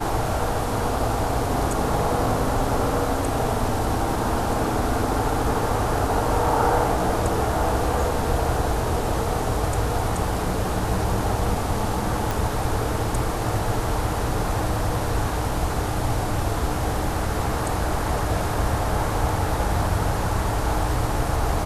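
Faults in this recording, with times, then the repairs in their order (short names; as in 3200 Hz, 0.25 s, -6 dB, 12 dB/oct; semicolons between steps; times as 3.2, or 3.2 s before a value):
12.31 pop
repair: de-click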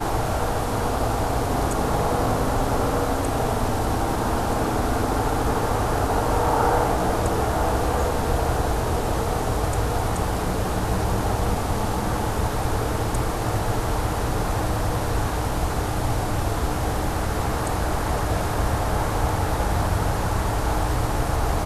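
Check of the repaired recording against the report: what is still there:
none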